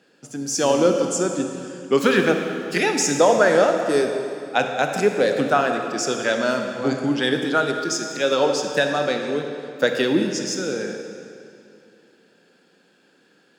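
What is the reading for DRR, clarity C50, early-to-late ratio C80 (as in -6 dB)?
4.0 dB, 4.5 dB, 5.5 dB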